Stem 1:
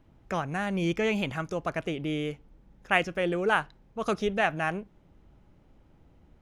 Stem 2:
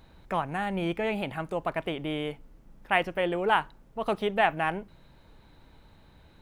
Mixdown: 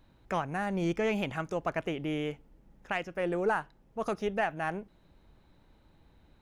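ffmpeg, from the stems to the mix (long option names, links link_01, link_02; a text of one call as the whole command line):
ffmpeg -i stem1.wav -i stem2.wav -filter_complex "[0:a]aeval=exprs='0.398*(cos(1*acos(clip(val(0)/0.398,-1,1)))-cos(1*PI/2))+0.0224*(cos(4*acos(clip(val(0)/0.398,-1,1)))-cos(4*PI/2))':channel_layout=same,volume=-4.5dB[link_01];[1:a]equalizer=frequency=120:width_type=o:width=1.2:gain=-11.5,volume=-9.5dB[link_02];[link_01][link_02]amix=inputs=2:normalize=0,alimiter=limit=-19dB:level=0:latency=1:release=447" out.wav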